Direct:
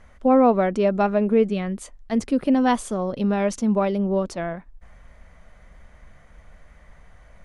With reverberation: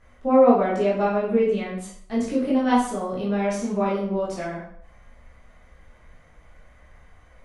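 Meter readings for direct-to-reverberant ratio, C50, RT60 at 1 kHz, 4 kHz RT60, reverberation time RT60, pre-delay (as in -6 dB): -7.0 dB, 3.5 dB, 0.60 s, 0.50 s, 0.60 s, 12 ms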